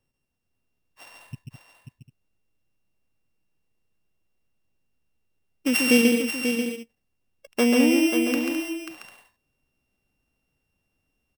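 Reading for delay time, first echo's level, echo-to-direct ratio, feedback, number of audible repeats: 139 ms, -4.0 dB, -1.0 dB, no regular repeats, 5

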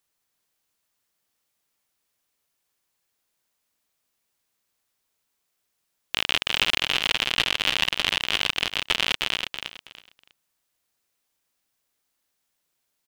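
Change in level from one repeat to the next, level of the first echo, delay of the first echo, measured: -13.0 dB, -6.0 dB, 324 ms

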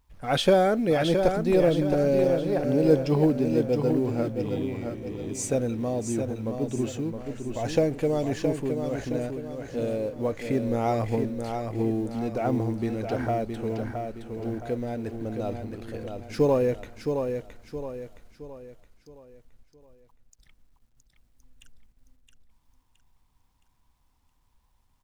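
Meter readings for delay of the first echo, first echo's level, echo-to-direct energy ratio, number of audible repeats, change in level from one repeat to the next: 668 ms, -6.0 dB, -5.0 dB, 4, -7.5 dB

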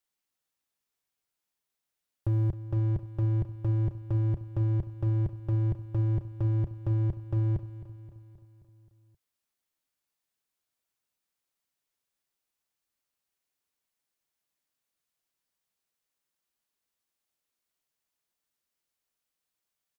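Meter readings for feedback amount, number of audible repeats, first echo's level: 58%, 5, -14.0 dB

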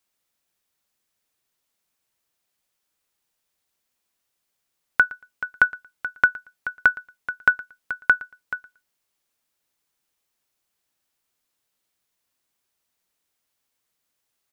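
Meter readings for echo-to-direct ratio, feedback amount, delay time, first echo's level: -21.0 dB, no regular repeats, 115 ms, -21.0 dB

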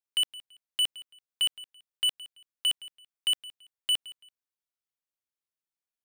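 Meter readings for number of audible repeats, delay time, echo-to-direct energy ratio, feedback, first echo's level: 2, 167 ms, -18.0 dB, 25%, -18.5 dB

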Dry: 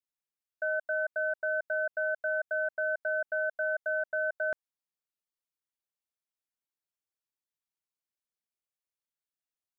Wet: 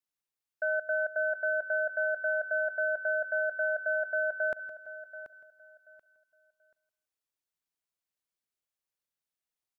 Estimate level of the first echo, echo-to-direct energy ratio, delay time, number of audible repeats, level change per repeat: -16.0 dB, -11.5 dB, 164 ms, 5, no regular repeats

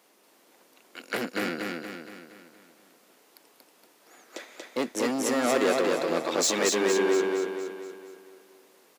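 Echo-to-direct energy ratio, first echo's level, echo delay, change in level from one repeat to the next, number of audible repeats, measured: -2.0 dB, -3.0 dB, 234 ms, -6.0 dB, 6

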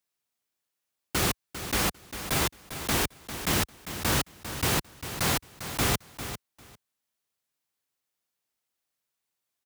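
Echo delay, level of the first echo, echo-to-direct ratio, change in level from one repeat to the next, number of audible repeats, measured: 399 ms, -11.0 dB, -11.0 dB, -16.0 dB, 2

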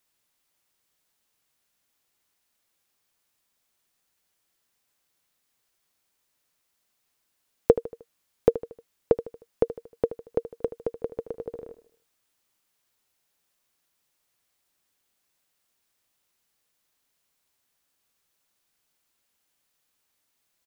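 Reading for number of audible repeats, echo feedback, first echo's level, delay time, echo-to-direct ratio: 4, 46%, -14.0 dB, 77 ms, -13.0 dB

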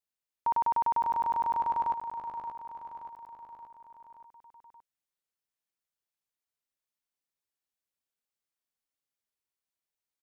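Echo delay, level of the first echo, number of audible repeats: 576 ms, -9.0 dB, 5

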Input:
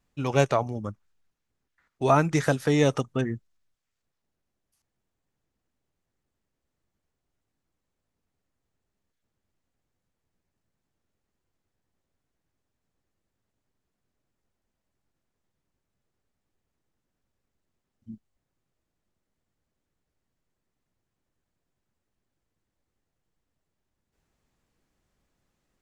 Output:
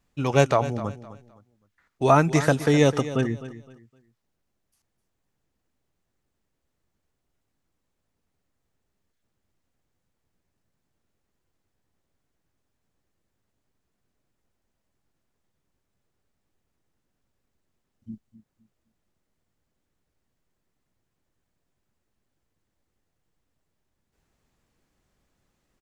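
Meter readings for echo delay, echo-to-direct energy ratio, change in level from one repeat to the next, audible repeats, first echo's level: 257 ms, -14.0 dB, -11.5 dB, 2, -14.5 dB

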